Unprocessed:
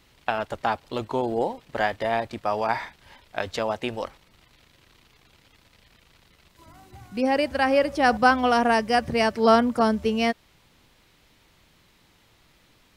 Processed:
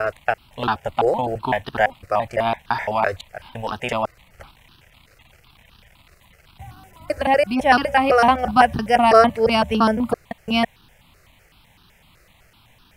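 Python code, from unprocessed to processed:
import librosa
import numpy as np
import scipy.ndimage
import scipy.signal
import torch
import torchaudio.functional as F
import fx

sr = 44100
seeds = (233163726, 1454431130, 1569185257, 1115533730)

y = fx.block_reorder(x, sr, ms=169.0, group=3)
y = fx.phaser_held(y, sr, hz=7.9, low_hz=900.0, high_hz=2100.0)
y = y * librosa.db_to_amplitude(8.0)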